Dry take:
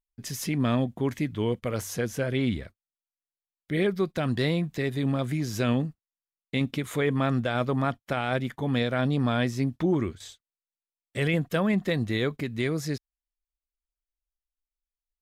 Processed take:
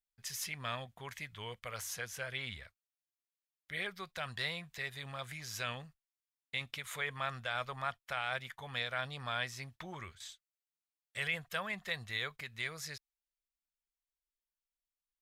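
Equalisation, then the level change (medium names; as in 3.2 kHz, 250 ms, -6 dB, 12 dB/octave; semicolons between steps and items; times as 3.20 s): amplifier tone stack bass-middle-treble 10-0-10; bass shelf 350 Hz -11 dB; treble shelf 2.5 kHz -9.5 dB; +4.5 dB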